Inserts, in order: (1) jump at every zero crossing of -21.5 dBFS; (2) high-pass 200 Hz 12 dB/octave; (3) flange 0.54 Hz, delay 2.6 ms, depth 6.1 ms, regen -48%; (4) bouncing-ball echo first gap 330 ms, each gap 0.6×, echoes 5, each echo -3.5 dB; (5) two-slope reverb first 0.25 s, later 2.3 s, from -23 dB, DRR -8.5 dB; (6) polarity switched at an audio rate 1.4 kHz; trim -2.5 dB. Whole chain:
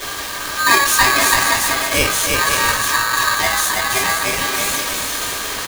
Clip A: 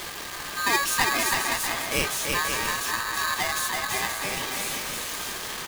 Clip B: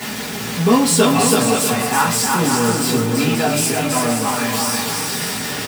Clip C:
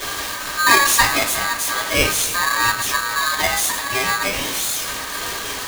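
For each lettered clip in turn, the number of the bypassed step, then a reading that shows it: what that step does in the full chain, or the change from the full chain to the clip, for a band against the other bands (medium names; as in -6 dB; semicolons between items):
5, loudness change -10.0 LU; 6, momentary loudness spread change -1 LU; 4, momentary loudness spread change +3 LU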